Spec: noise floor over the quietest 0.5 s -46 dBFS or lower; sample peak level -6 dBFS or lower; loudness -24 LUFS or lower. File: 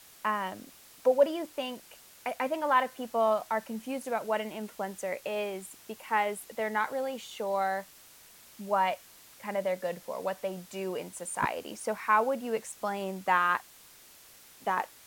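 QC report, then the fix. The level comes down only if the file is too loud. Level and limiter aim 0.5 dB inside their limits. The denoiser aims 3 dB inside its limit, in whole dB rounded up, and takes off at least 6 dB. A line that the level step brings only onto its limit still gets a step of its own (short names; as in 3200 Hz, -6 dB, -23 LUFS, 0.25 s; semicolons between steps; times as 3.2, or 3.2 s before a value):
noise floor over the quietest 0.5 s -55 dBFS: OK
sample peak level -12.0 dBFS: OK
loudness -31.5 LUFS: OK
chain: none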